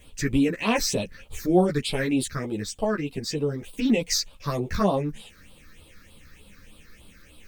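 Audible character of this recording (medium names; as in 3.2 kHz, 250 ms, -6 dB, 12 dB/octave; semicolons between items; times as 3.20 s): phasing stages 6, 3.3 Hz, lowest notch 750–1800 Hz; a quantiser's noise floor 12-bit, dither triangular; a shimmering, thickened sound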